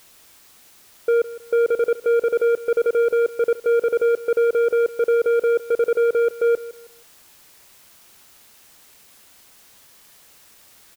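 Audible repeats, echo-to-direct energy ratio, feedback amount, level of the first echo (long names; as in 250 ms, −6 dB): 2, −16.5 dB, 29%, −17.0 dB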